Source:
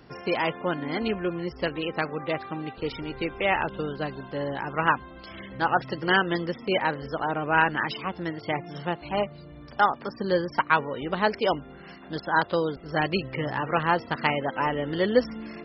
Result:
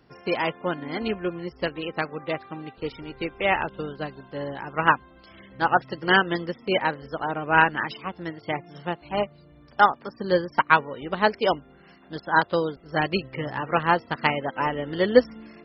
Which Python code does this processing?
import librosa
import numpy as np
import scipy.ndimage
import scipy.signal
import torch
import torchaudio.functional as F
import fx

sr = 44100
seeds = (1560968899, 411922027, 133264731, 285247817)

y = fx.upward_expand(x, sr, threshold_db=-40.0, expansion=1.5)
y = y * librosa.db_to_amplitude(5.5)